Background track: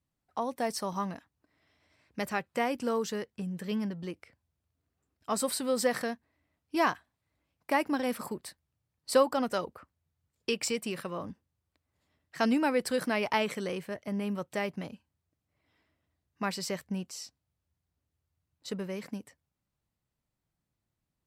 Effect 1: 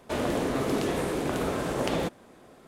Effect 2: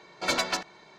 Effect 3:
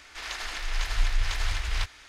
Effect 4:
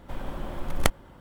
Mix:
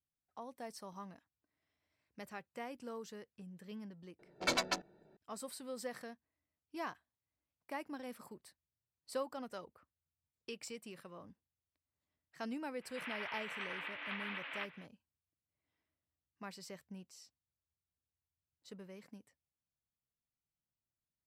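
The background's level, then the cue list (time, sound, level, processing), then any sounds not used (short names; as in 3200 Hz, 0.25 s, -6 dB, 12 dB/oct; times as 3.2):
background track -15.5 dB
4.19 add 2 -5 dB + Wiener smoothing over 41 samples
12.8 add 3 -6.5 dB, fades 0.05 s + mistuned SSB +200 Hz 160–2800 Hz
not used: 1, 4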